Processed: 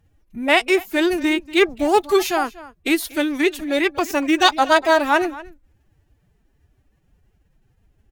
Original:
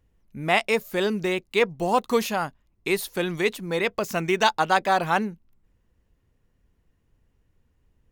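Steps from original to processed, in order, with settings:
slap from a distant wall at 41 metres, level −18 dB
phase-vocoder pitch shift with formants kept +9 semitones
level +6 dB

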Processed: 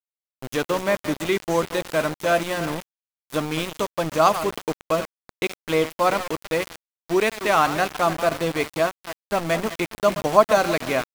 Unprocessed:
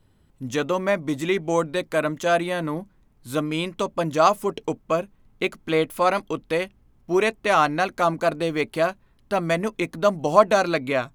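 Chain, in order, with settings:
feedback delay that plays each chunk backwards 166 ms, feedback 41%, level −11 dB
centre clipping without the shift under −26 dBFS

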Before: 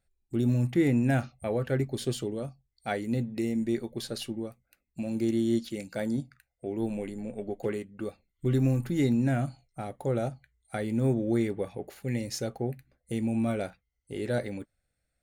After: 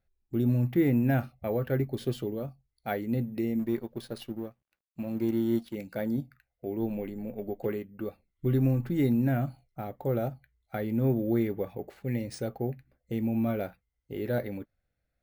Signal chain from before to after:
0:03.59–0:05.75: mu-law and A-law mismatch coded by A
high-shelf EQ 3,500 Hz −10 dB
bad sample-rate conversion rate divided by 3×, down filtered, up hold

